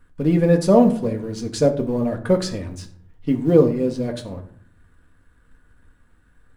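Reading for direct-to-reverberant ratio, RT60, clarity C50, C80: 3.0 dB, 0.60 s, 12.0 dB, 16.0 dB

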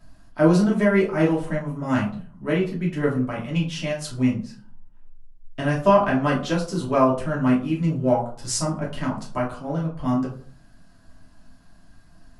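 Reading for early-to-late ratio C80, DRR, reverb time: 13.0 dB, −5.0 dB, 0.45 s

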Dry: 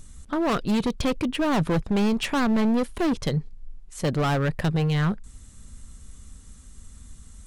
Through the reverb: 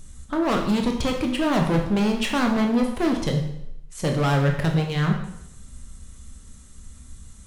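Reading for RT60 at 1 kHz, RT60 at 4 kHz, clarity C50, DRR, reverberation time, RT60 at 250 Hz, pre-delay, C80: 0.75 s, 0.70 s, 6.0 dB, 2.5 dB, 0.75 s, 0.80 s, 7 ms, 8.5 dB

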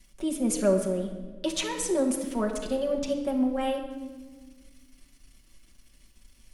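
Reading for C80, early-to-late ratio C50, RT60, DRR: 8.5 dB, 7.0 dB, 1.5 s, 0.0 dB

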